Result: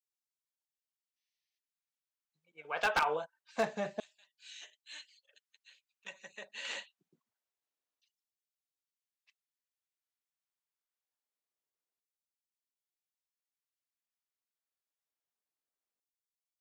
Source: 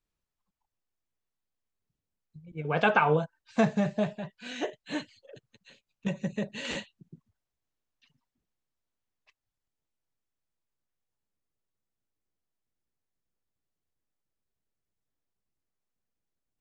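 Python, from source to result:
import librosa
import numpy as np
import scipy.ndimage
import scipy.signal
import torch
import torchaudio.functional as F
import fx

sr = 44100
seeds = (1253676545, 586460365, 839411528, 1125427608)

y = fx.spec_box(x, sr, start_s=1.17, length_s=0.41, low_hz=1700.0, high_hz=6400.0, gain_db=12)
y = fx.filter_lfo_highpass(y, sr, shape='saw_down', hz=0.25, low_hz=340.0, high_hz=5400.0, q=0.74)
y = 10.0 ** (-17.5 / 20.0) * (np.abs((y / 10.0 ** (-17.5 / 20.0) + 3.0) % 4.0 - 2.0) - 1.0)
y = F.gain(torch.from_numpy(y), -4.0).numpy()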